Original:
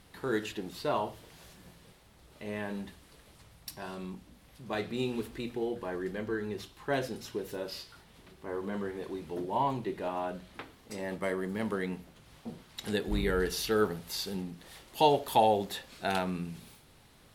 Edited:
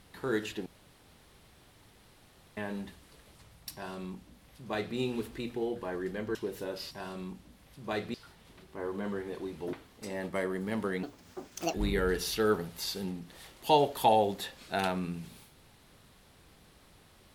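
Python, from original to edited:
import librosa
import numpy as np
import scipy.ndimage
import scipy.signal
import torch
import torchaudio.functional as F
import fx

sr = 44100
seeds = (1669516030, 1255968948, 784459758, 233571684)

y = fx.edit(x, sr, fx.room_tone_fill(start_s=0.66, length_s=1.91),
    fx.duplicate(start_s=3.73, length_s=1.23, to_s=7.83),
    fx.cut(start_s=6.35, length_s=0.92),
    fx.cut(start_s=9.42, length_s=1.19),
    fx.speed_span(start_s=11.91, length_s=1.14, speed=1.61), tone=tone)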